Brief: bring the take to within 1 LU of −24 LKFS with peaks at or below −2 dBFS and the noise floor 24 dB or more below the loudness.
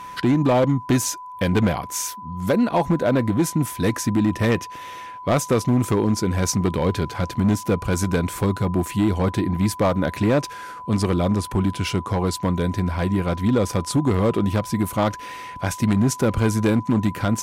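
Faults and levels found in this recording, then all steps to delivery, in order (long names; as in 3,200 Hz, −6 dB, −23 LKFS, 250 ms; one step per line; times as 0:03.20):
share of clipped samples 1.4%; peaks flattened at −12.5 dBFS; interfering tone 1,000 Hz; level of the tone −34 dBFS; integrated loudness −21.5 LKFS; sample peak −12.5 dBFS; target loudness −24.0 LKFS
→ clipped peaks rebuilt −12.5 dBFS
notch filter 1,000 Hz, Q 30
level −2.5 dB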